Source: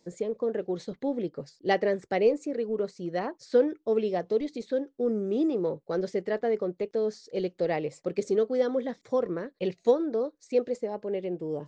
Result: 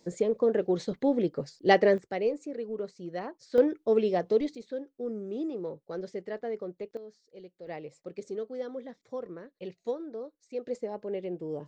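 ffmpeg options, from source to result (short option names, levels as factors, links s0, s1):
-af "asetnsamples=n=441:p=0,asendcmd='1.98 volume volume -5.5dB;3.58 volume volume 1.5dB;4.55 volume volume -7.5dB;6.97 volume volume -18dB;7.67 volume volume -10.5dB;10.67 volume volume -3dB',volume=1.58"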